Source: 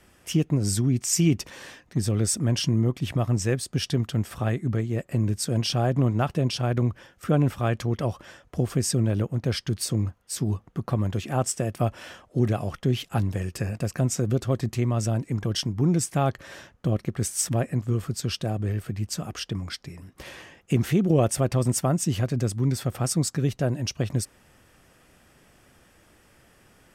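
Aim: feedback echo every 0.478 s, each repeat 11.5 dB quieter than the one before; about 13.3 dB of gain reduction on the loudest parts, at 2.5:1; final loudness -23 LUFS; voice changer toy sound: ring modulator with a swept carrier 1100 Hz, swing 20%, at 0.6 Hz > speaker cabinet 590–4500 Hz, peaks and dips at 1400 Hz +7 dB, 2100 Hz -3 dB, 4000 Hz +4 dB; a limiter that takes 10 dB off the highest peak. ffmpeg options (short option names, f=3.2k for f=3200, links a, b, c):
-af "acompressor=threshold=-38dB:ratio=2.5,alimiter=level_in=8dB:limit=-24dB:level=0:latency=1,volume=-8dB,aecho=1:1:478|956|1434:0.266|0.0718|0.0194,aeval=exprs='val(0)*sin(2*PI*1100*n/s+1100*0.2/0.6*sin(2*PI*0.6*n/s))':c=same,highpass=590,equalizer=f=1.4k:t=q:w=4:g=7,equalizer=f=2.1k:t=q:w=4:g=-3,equalizer=f=4k:t=q:w=4:g=4,lowpass=f=4.5k:w=0.5412,lowpass=f=4.5k:w=1.3066,volume=18dB"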